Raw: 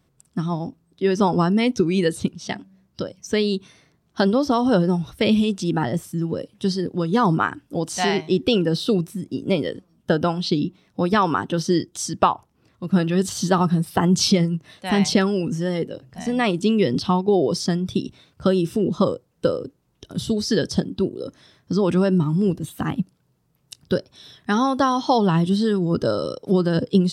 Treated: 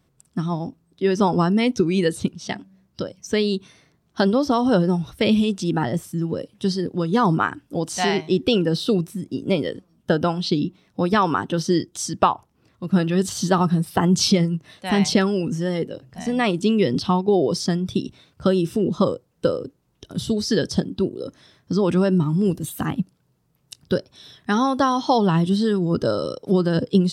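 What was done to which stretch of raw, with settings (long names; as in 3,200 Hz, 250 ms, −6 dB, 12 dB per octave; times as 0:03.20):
0:22.45–0:22.86: high-shelf EQ 6,500 Hz +10.5 dB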